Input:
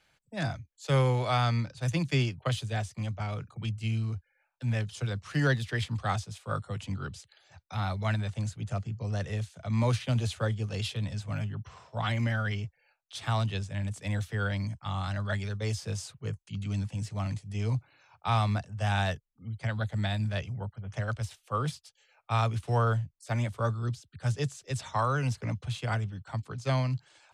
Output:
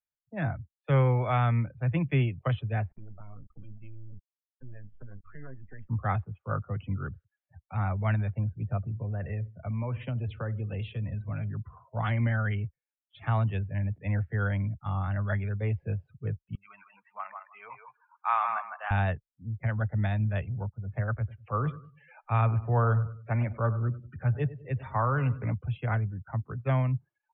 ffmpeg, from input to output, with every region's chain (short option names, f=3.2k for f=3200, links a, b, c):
-filter_complex "[0:a]asettb=1/sr,asplit=3[a][b][c];[a]atrim=end=2.914[d];[b]atrim=start=2.91:end=5.89,asetpts=PTS-STARTPTS,afade=t=in:d=0.004:c=qsin,afade=t=out:st=2.976:d=0.004:c=qsin,highpass=58,acompressor=threshold=-44dB:ratio=3:attack=3.2:release=140:knee=1:detection=peak,acrusher=bits=6:dc=4:mix=0:aa=0.000001[e];[c]atrim=start=5.886[f];[d][e]acrossfade=d=0.004:c1=hsin:c2=qsin[g];[g][f]acrossfade=d=0.004:c1=qsin:c2=hsin,asettb=1/sr,asplit=3[h][i][j];[h]atrim=end=8.774[k];[i]atrim=start=8.77:end=11.6,asetpts=PTS-STARTPTS,afade=t=in:d=0.004:c=qsin,afade=t=out:st=2.826:d=0.004:c=qsin,highshelf=f=5.8k:g=7,aecho=1:1:64|128|192:0.119|0.044|0.0163,atrim=end_sample=124803,acompressor=threshold=-31dB:ratio=4:attack=3.2:release=140:knee=1:detection=peak[l];[j]atrim=start=11.596[m];[k][l]acrossfade=d=0.004:c1=hsin:c2=qsin[n];[n][m]acrossfade=d=0.004:c1=qsin:c2=hsin,asettb=1/sr,asplit=3[o][p][q];[o]atrim=end=16.554[r];[p]atrim=start=16.55:end=18.91,asetpts=PTS-STARTPTS,afade=t=in:d=0.004:c=qsin,afade=t=out:st=2.356:d=0.004:c=qsin,highpass=f=1.1k:t=q:w=2,highshelf=f=4.5k:g=-7.5,aecho=1:1:157|314|471:0.562|0.124|0.0272,atrim=end_sample=104076[s];[q]atrim=start=18.906[t];[r][s]acrossfade=d=0.004:c1=hsin:c2=qsin[u];[u][t]acrossfade=d=0.004:c1=qsin:c2=hsin,asettb=1/sr,asplit=3[v][w][x];[v]atrim=end=21.184[y];[w]atrim=start=21.18:end=25.54,asetpts=PTS-STARTPTS,afade=t=in:d=0.004:c=qsin,afade=t=out:st=4.356:d=0.004:c=qsin,lowpass=5.6k,acompressor=mode=upward:threshold=-36dB:ratio=2.5:attack=3.2:release=140:knee=2.83:detection=peak,aecho=1:1:98|196|294|392:0.178|0.0782|0.0344|0.0151,atrim=end_sample=192276[z];[x]atrim=start=25.536[aa];[y][z]acrossfade=d=0.004:c1=hsin:c2=qsin[ab];[ab][aa]acrossfade=d=0.004:c1=qsin:c2=hsin,lowpass=f=2.6k:w=0.5412,lowpass=f=2.6k:w=1.3066,afftdn=nr=35:nf=-48,lowshelf=f=79:g=8.5"